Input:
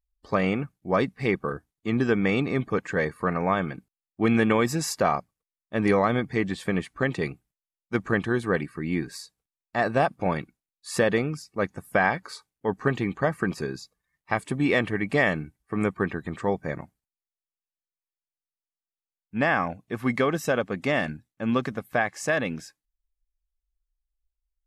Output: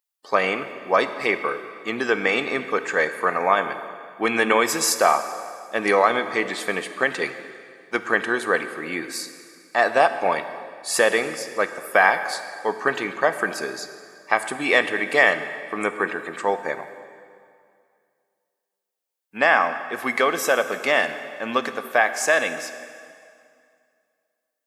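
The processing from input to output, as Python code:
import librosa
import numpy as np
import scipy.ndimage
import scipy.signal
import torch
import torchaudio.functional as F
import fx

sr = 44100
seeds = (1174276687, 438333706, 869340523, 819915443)

y = scipy.signal.sosfilt(scipy.signal.butter(2, 530.0, 'highpass', fs=sr, output='sos'), x)
y = fx.high_shelf(y, sr, hz=7900.0, db=6.0)
y = fx.rev_plate(y, sr, seeds[0], rt60_s=2.3, hf_ratio=0.85, predelay_ms=0, drr_db=9.5)
y = y * 10.0 ** (7.0 / 20.0)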